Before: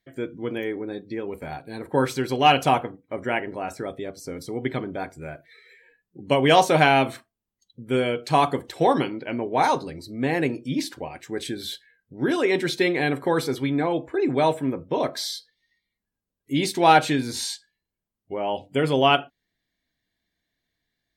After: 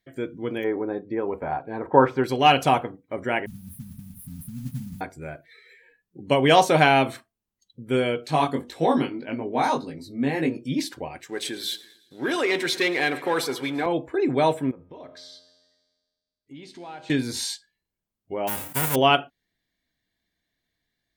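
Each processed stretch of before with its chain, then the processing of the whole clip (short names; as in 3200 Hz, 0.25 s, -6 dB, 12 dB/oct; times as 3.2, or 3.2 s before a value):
0.64–2.24 notch 4100 Hz, Q 10 + de-esser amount 75% + EQ curve 180 Hz 0 dB, 490 Hz +5 dB, 990 Hz +10 dB, 9000 Hz -25 dB
3.46–5.01 zero-crossing step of -35 dBFS + brick-wall FIR band-stop 250–9100 Hz + modulation noise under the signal 21 dB
8.26–10.57 chorus 1.8 Hz, delay 18.5 ms, depth 3.2 ms + small resonant body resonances 250/3700 Hz, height 10 dB, ringing for 95 ms
11.27–13.86 feedback echo 0.113 s, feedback 59%, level -18 dB + sample leveller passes 1 + HPF 660 Hz 6 dB/oct
14.71–17.1 air absorption 89 m + compressor 3:1, threshold -32 dBFS + resonator 88 Hz, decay 1.6 s, mix 70%
18.47–18.94 spectral whitening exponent 0.1 + bell 4700 Hz -15 dB 1.6 oct + sustainer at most 76 dB/s
whole clip: dry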